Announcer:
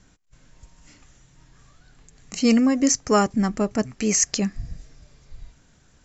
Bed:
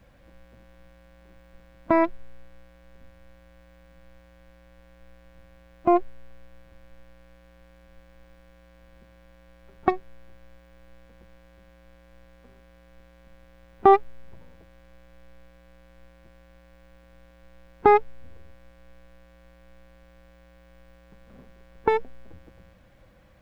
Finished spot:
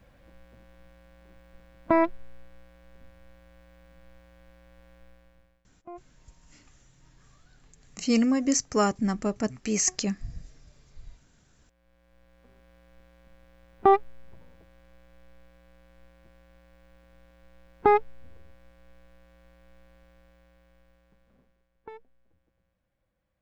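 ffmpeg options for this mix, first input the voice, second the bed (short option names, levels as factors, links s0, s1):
-filter_complex "[0:a]adelay=5650,volume=0.562[s0];[1:a]volume=9.44,afade=t=out:st=4.96:d=0.69:silence=0.0707946,afade=t=in:st=11.52:d=1.19:silence=0.0891251,afade=t=out:st=19.96:d=1.73:silence=0.105925[s1];[s0][s1]amix=inputs=2:normalize=0"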